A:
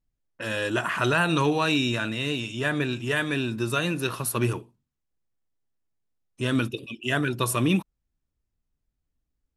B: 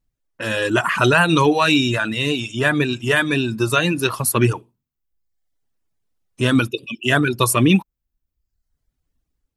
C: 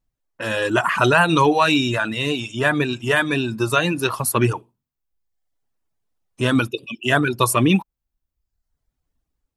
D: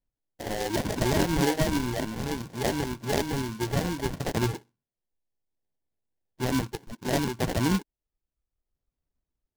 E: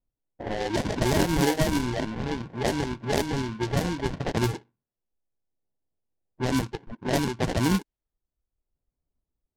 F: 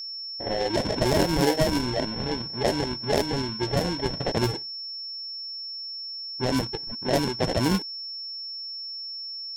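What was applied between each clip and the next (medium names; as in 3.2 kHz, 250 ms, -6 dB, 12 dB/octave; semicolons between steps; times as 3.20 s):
reverb removal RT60 0.85 s; level rider gain up to 4 dB; trim +5 dB
peaking EQ 840 Hz +5 dB 1.3 oct; trim -2.5 dB
sample-and-hold 35×; delay time shaken by noise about 3.6 kHz, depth 0.058 ms; trim -8.5 dB
level-controlled noise filter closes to 1 kHz, open at -21 dBFS; trim +1.5 dB
dynamic bell 560 Hz, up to +6 dB, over -40 dBFS, Q 1.7; whistle 5.4 kHz -32 dBFS; trim -1 dB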